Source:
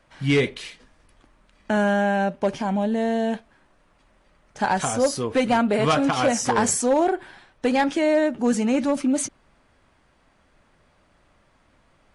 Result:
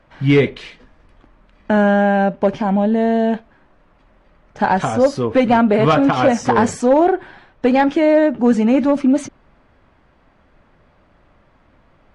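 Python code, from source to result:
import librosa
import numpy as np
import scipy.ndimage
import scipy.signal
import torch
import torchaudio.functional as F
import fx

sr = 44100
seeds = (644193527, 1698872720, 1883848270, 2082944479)

y = fx.spacing_loss(x, sr, db_at_10k=22)
y = y * 10.0 ** (8.0 / 20.0)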